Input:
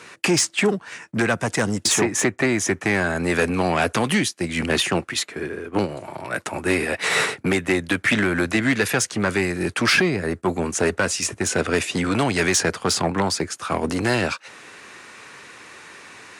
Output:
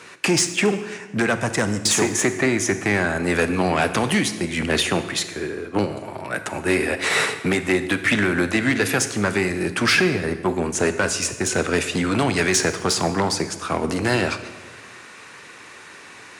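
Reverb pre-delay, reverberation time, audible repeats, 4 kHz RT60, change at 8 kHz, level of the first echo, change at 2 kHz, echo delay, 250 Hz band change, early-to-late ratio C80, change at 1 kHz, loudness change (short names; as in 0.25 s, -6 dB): 29 ms, 1.3 s, none, 1.0 s, +0.5 dB, none, +0.5 dB, none, +0.5 dB, 13.0 dB, +0.5 dB, +0.5 dB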